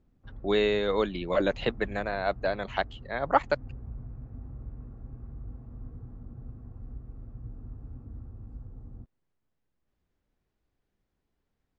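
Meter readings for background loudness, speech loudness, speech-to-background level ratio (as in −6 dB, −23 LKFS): −45.5 LKFS, −29.0 LKFS, 16.5 dB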